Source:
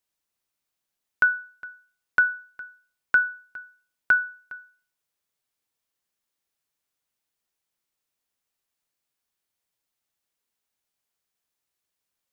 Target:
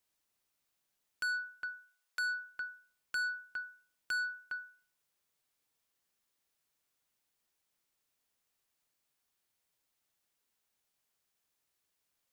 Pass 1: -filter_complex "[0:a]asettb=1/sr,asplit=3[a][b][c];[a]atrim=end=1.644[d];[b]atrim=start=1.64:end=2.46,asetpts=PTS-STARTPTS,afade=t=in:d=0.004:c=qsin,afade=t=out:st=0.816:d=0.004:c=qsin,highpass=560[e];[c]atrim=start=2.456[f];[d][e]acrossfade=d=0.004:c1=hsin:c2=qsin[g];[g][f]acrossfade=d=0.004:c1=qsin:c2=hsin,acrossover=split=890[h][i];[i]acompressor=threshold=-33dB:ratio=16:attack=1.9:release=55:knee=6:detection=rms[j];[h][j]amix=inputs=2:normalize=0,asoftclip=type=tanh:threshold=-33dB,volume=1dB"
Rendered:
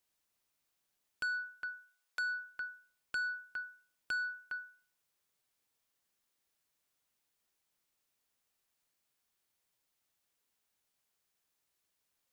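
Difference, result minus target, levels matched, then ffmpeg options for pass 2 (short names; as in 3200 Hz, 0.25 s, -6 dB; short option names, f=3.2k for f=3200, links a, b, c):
compressor: peak gain reduction +7.5 dB
-filter_complex "[0:a]asettb=1/sr,asplit=3[a][b][c];[a]atrim=end=1.644[d];[b]atrim=start=1.64:end=2.46,asetpts=PTS-STARTPTS,afade=t=in:d=0.004:c=qsin,afade=t=out:st=0.816:d=0.004:c=qsin,highpass=560[e];[c]atrim=start=2.456[f];[d][e]acrossfade=d=0.004:c1=hsin:c2=qsin[g];[g][f]acrossfade=d=0.004:c1=qsin:c2=hsin,acrossover=split=890[h][i];[i]acompressor=threshold=-25dB:ratio=16:attack=1.9:release=55:knee=6:detection=rms[j];[h][j]amix=inputs=2:normalize=0,asoftclip=type=tanh:threshold=-33dB,volume=1dB"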